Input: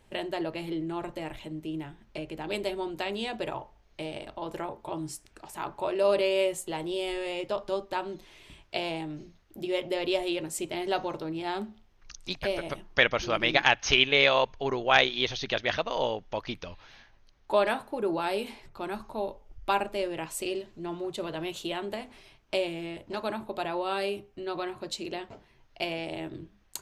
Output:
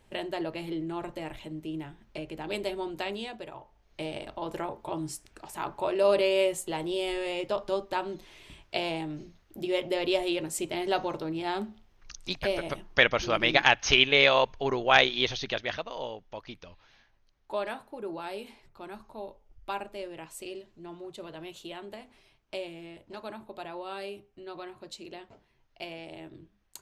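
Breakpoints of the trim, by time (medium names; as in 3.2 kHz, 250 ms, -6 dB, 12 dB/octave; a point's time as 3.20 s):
3.09 s -1 dB
3.50 s -10 dB
4.02 s +1 dB
15.30 s +1 dB
15.96 s -8 dB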